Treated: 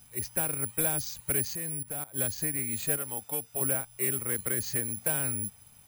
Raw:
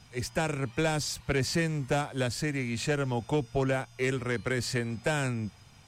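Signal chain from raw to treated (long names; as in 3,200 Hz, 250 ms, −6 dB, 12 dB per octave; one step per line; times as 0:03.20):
0:01.42–0:02.14: output level in coarse steps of 17 dB
0:02.97–0:03.61: low-shelf EQ 340 Hz −11 dB
bad sample-rate conversion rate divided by 4×, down filtered, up zero stuff
level −6.5 dB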